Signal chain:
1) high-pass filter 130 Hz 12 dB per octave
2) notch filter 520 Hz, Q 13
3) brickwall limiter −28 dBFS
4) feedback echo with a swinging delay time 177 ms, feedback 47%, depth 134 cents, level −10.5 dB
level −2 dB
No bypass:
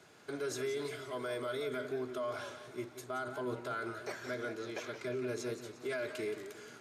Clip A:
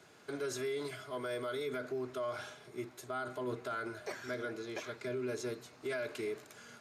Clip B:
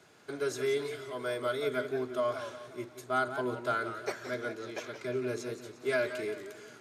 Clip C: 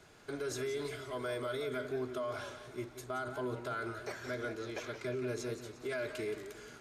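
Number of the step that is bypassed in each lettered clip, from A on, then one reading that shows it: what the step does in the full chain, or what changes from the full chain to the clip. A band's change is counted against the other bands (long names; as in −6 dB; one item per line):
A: 4, change in crest factor −2.0 dB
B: 3, average gain reduction 2.0 dB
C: 1, 125 Hz band +3.5 dB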